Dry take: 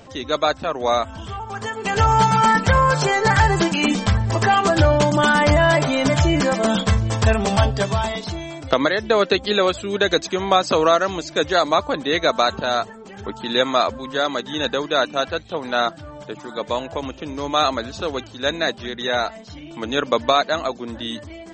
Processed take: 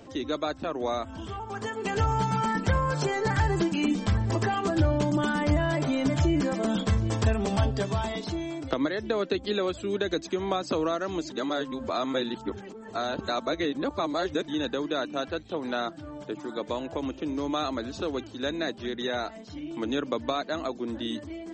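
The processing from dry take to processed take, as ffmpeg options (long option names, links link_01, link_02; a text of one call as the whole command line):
ffmpeg -i in.wav -filter_complex "[0:a]asplit=3[link_01][link_02][link_03];[link_01]atrim=end=11.302[link_04];[link_02]atrim=start=11.298:end=14.482,asetpts=PTS-STARTPTS,areverse[link_05];[link_03]atrim=start=14.478[link_06];[link_04][link_05]acrossfade=duration=0.004:curve1=hsin:curve2=hsin[link_07];[link_07][link_06]acrossfade=duration=0.004:curve1=hsin:curve2=hsin,equalizer=frequency=310:width=1.6:gain=9.5,acrossover=split=170[link_08][link_09];[link_09]acompressor=threshold=-21dB:ratio=2.5[link_10];[link_08][link_10]amix=inputs=2:normalize=0,volume=-7dB" out.wav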